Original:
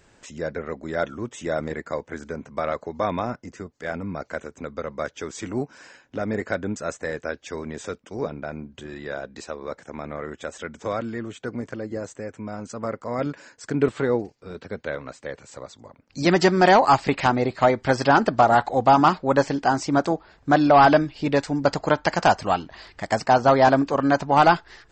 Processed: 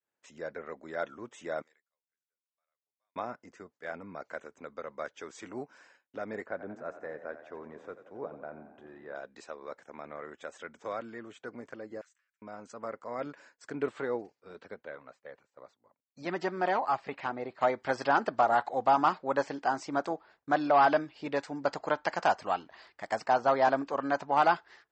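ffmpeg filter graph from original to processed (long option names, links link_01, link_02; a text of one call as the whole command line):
ffmpeg -i in.wav -filter_complex "[0:a]asettb=1/sr,asplit=3[link_01][link_02][link_03];[link_01]atrim=end=1.624[link_04];[link_02]atrim=start=1.62:end=3.16,asetpts=PTS-STARTPTS,afade=type=in:duration=0.004:curve=qsin,afade=type=out:start_time=1.536:duration=0.004:curve=qsin,aderivative,acompressor=threshold=-58dB:ratio=3:attack=3.2:release=140:knee=1:detection=peak[link_05];[link_03]atrim=start=3.156[link_06];[link_04][link_05]acrossfade=duration=0.004:curve1=hsin:curve2=qsin[link_07];[link_07][link_06]acrossfade=duration=0.004:curve1=qsin:curve2=hsin,asettb=1/sr,asplit=3[link_08][link_09][link_10];[link_08]atrim=end=6.464[link_11];[link_09]atrim=start=6.46:end=9.15,asetpts=PTS-STARTPTS,afade=type=in:duration=0.004:curve=qsin,afade=type=out:start_time=2.686:duration=0.004:curve=qsin,lowpass=1200,aemphasis=mode=production:type=75fm,asplit=8[link_12][link_13][link_14][link_15][link_16][link_17][link_18][link_19];[link_13]adelay=88,afreqshift=30,volume=-12.5dB[link_20];[link_14]adelay=176,afreqshift=60,volume=-16.5dB[link_21];[link_15]adelay=264,afreqshift=90,volume=-20.5dB[link_22];[link_16]adelay=352,afreqshift=120,volume=-24.5dB[link_23];[link_17]adelay=440,afreqshift=150,volume=-28.6dB[link_24];[link_18]adelay=528,afreqshift=180,volume=-32.6dB[link_25];[link_19]adelay=616,afreqshift=210,volume=-36.6dB[link_26];[link_12][link_20][link_21][link_22][link_23][link_24][link_25][link_26]amix=inputs=8:normalize=0,atrim=end_sample=118629[link_27];[link_10]atrim=start=9.146[link_28];[link_11][link_27]acrossfade=duration=0.004:curve1=hsin:curve2=qsin[link_29];[link_29][link_28]acrossfade=duration=0.004:curve1=qsin:curve2=hsin,asettb=1/sr,asplit=3[link_30][link_31][link_32];[link_30]atrim=end=12.014[link_33];[link_31]atrim=start=12.01:end=12.42,asetpts=PTS-STARTPTS,afade=type=in:duration=0.004:curve=qsin,afade=type=out:start_time=0.406:duration=0.004:curve=qsin,asoftclip=type=hard:threshold=-30.5dB,highpass=frequency=1500:width=0.5412,highpass=frequency=1500:width=1.3066,acompressor=threshold=-50dB:ratio=12:attack=3.2:release=140:knee=1:detection=peak[link_34];[link_32]atrim=start=12.416[link_35];[link_33][link_34]acrossfade=duration=0.004:curve1=hsin:curve2=qsin[link_36];[link_36][link_35]acrossfade=duration=0.004:curve1=qsin:curve2=hsin,asettb=1/sr,asplit=3[link_37][link_38][link_39];[link_37]atrim=end=14.744[link_40];[link_38]atrim=start=14.74:end=17.61,asetpts=PTS-STARTPTS,afade=type=in:duration=0.004:curve=qsin,afade=type=out:start_time=2.866:duration=0.004:curve=qsin,lowpass=frequency=3100:poles=1,flanger=delay=0:depth=1.7:regen=-63:speed=1.1:shape=sinusoidal[link_41];[link_39]atrim=start=17.606[link_42];[link_40][link_41]acrossfade=duration=0.004:curve1=hsin:curve2=qsin[link_43];[link_43][link_42]acrossfade=duration=0.004:curve1=qsin:curve2=hsin,agate=range=-33dB:threshold=-42dB:ratio=3:detection=peak,highpass=frequency=800:poles=1,highshelf=frequency=2400:gain=-10.5,volume=-4dB" out.wav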